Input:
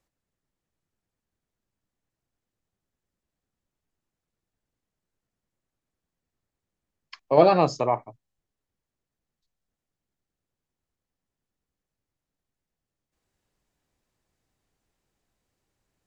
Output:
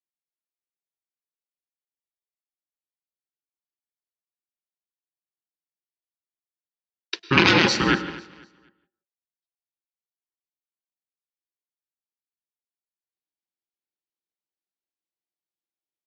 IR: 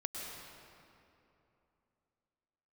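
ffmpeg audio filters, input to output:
-filter_complex "[0:a]aeval=exprs='0.631*(cos(1*acos(clip(val(0)/0.631,-1,1)))-cos(1*PI/2))+0.316*(cos(3*acos(clip(val(0)/0.631,-1,1)))-cos(3*PI/2))':channel_layout=same,crystalizer=i=5.5:c=0,agate=range=-33dB:threshold=-49dB:ratio=3:detection=peak,aeval=exprs='val(0)*sin(2*PI*680*n/s)':channel_layout=same,highpass=150,equalizer=frequency=190:width_type=q:width=4:gain=6,equalizer=frequency=340:width_type=q:width=4:gain=9,equalizer=frequency=660:width_type=q:width=4:gain=-10,equalizer=frequency=1200:width_type=q:width=4:gain=-8,lowpass=frequency=4600:width=0.5412,lowpass=frequency=4600:width=1.3066,aecho=1:1:248|496|744:0.106|0.0339|0.0108,asplit=2[link_01][link_02];[1:a]atrim=start_sample=2205,afade=type=out:start_time=0.23:duration=0.01,atrim=end_sample=10584[link_03];[link_02][link_03]afir=irnorm=-1:irlink=0,volume=-5dB[link_04];[link_01][link_04]amix=inputs=2:normalize=0,alimiter=level_in=13.5dB:limit=-1dB:release=50:level=0:latency=1,volume=-1dB"

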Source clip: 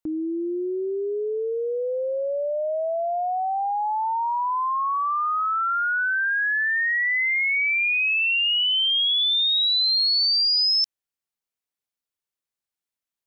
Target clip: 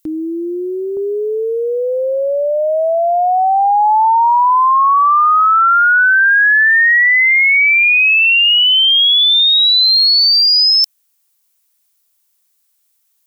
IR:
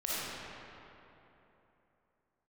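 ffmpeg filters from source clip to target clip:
-af "crystalizer=i=7.5:c=0,asetnsamples=nb_out_samples=441:pad=0,asendcmd='0.97 equalizer g 5',equalizer=frequency=990:width=1:gain=-5,apsyclip=14dB,volume=-7.5dB"

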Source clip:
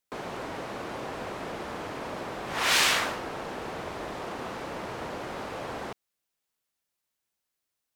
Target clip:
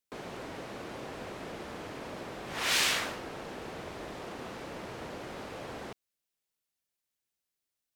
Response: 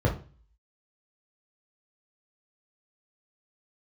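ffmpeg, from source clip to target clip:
-af "equalizer=frequency=1000:width=0.91:gain=-4.5,volume=-3.5dB"

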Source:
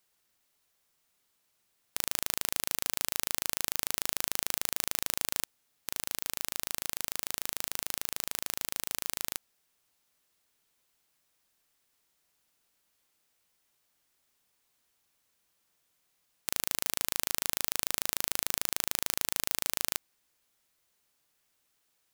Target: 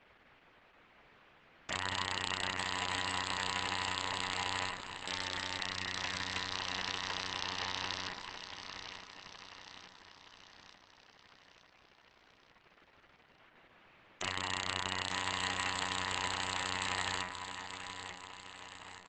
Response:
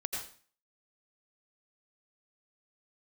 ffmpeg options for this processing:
-filter_complex "[0:a]lowpass=frequency=2200:width=0.5412,lowpass=frequency=2200:width=1.3066,bandreject=frequency=77.84:width_type=h:width=4,bandreject=frequency=155.68:width_type=h:width=4,bandreject=frequency=233.52:width_type=h:width=4,bandreject=frequency=311.36:width_type=h:width=4,bandreject=frequency=389.2:width_type=h:width=4,bandreject=frequency=467.04:width_type=h:width=4,bandreject=frequency=544.88:width_type=h:width=4,bandreject=frequency=622.72:width_type=h:width=4,bandreject=frequency=700.56:width_type=h:width=4,bandreject=frequency=778.4:width_type=h:width=4,bandreject=frequency=856.24:width_type=h:width=4,bandreject=frequency=934.08:width_type=h:width=4,bandreject=frequency=1011.92:width_type=h:width=4,bandreject=frequency=1089.76:width_type=h:width=4,bandreject=frequency=1167.6:width_type=h:width=4,bandreject=frequency=1245.44:width_type=h:width=4,bandreject=frequency=1323.28:width_type=h:width=4,bandreject=frequency=1401.12:width_type=h:width=4,bandreject=frequency=1478.96:width_type=h:width=4,bandreject=frequency=1556.8:width_type=h:width=4,bandreject=frequency=1634.64:width_type=h:width=4,bandreject=frequency=1712.48:width_type=h:width=4,bandreject=frequency=1790.32:width_type=h:width=4,bandreject=frequency=1868.16:width_type=h:width=4,bandreject=frequency=1946:width_type=h:width=4,bandreject=frequency=2023.84:width_type=h:width=4,bandreject=frequency=2101.68:width_type=h:width=4,bandreject=frequency=2179.52:width_type=h:width=4,bandreject=frequency=2257.36:width_type=h:width=4,bandreject=frequency=2335.2:width_type=h:width=4,bandreject=frequency=2413.04:width_type=h:width=4,bandreject=frequency=2490.88:width_type=h:width=4,bandreject=frequency=2568.72:width_type=h:width=4,bandreject=frequency=2646.56:width_type=h:width=4,asplit=2[link_01][link_02];[link_02]acompressor=threshold=-50dB:ratio=20,volume=1dB[link_03];[link_01][link_03]amix=inputs=2:normalize=0,aeval=exprs='0.133*sin(PI/2*4.47*val(0)/0.133)':channel_layout=same,asetrate=51156,aresample=44100,aecho=1:1:886|1772|2658|3544|4430|5316:0.398|0.211|0.112|0.0593|0.0314|0.0166[link_04];[1:a]atrim=start_sample=2205,atrim=end_sample=3528[link_05];[link_04][link_05]afir=irnorm=-1:irlink=0" -ar 48000 -c:a libopus -b:a 10k

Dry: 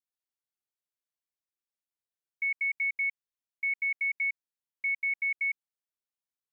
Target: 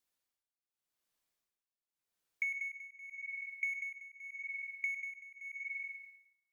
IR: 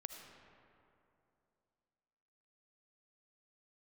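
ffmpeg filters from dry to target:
-filter_complex "[0:a]asplit=2[link_01][link_02];[link_02]asoftclip=type=hard:threshold=-36.5dB,volume=-10.5dB[link_03];[link_01][link_03]amix=inputs=2:normalize=0[link_04];[1:a]atrim=start_sample=2205,asetrate=83790,aresample=44100[link_05];[link_04][link_05]afir=irnorm=-1:irlink=0,acompressor=threshold=-51dB:ratio=6,tremolo=f=0.85:d=0.88,volume=16.5dB"

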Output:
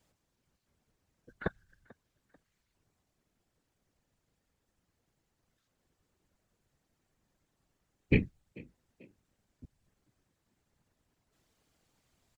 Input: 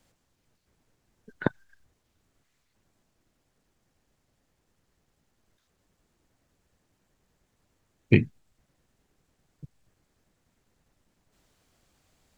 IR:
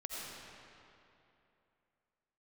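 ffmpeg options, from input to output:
-filter_complex "[0:a]afftfilt=real='hypot(re,im)*cos(2*PI*random(0))':imag='hypot(re,im)*sin(2*PI*random(1))':win_size=512:overlap=0.75,asplit=2[link_01][link_02];[link_02]asplit=2[link_03][link_04];[link_03]adelay=440,afreqshift=51,volume=-23.5dB[link_05];[link_04]adelay=880,afreqshift=102,volume=-31.9dB[link_06];[link_05][link_06]amix=inputs=2:normalize=0[link_07];[link_01][link_07]amix=inputs=2:normalize=0"

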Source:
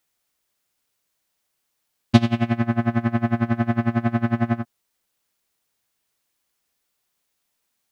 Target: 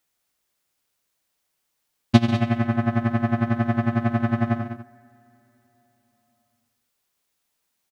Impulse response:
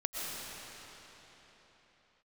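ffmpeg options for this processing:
-filter_complex "[0:a]aecho=1:1:142|199:0.211|0.282,asplit=2[link_01][link_02];[1:a]atrim=start_sample=2205,lowpass=1800[link_03];[link_02][link_03]afir=irnorm=-1:irlink=0,volume=-24dB[link_04];[link_01][link_04]amix=inputs=2:normalize=0,volume=-1dB"

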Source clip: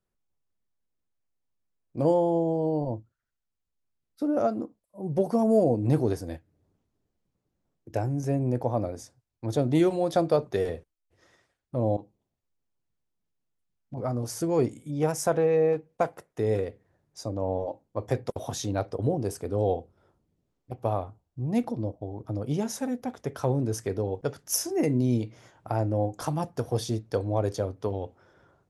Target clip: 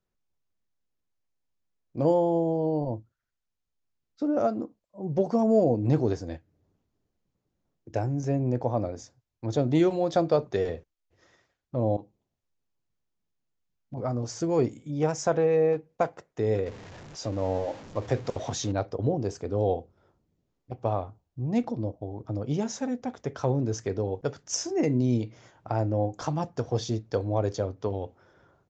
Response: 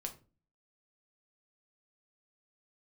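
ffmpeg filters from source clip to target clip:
-filter_complex "[0:a]asettb=1/sr,asplit=3[link_01][link_02][link_03];[link_01]atrim=end=16.664[link_04];[link_02]atrim=start=16.66:end=18.72,asetpts=PTS-STARTPTS,afade=type=in:duration=0.004:curve=qsin,afade=type=out:start_time=2.056:duration=0.004:curve=qsin,aeval=exprs='val(0)+0.5*0.0106*sgn(val(0))':channel_layout=same[link_05];[link_03]atrim=start=18.716[link_06];[link_04][link_05]acrossfade=duration=0.004:curve1=hsin:curve2=qsin[link_07];[link_07][link_06]acrossfade=duration=0.004:curve1=qsin:curve2=hsin,aresample=16000,aresample=44100"

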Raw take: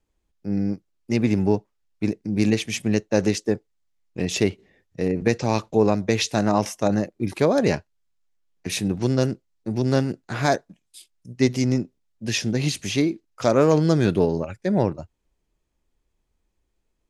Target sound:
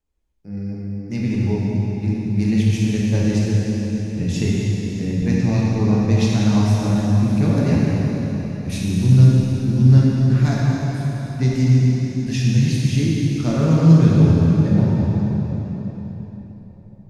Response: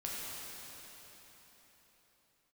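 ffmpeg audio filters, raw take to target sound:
-filter_complex "[0:a]asubboost=boost=10:cutoff=160[link_01];[1:a]atrim=start_sample=2205[link_02];[link_01][link_02]afir=irnorm=-1:irlink=0,volume=-4dB"

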